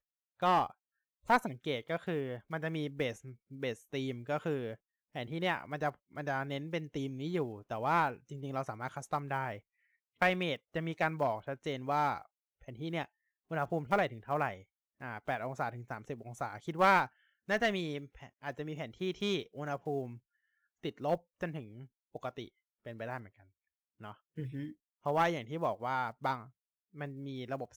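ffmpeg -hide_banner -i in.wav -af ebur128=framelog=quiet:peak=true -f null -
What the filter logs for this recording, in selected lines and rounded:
Integrated loudness:
  I:         -35.8 LUFS
  Threshold: -46.4 LUFS
Loudness range:
  LRA:         7.4 LU
  Threshold: -56.7 LUFS
  LRA low:   -41.4 LUFS
  LRA high:  -34.0 LUFS
True peak:
  Peak:      -13.3 dBFS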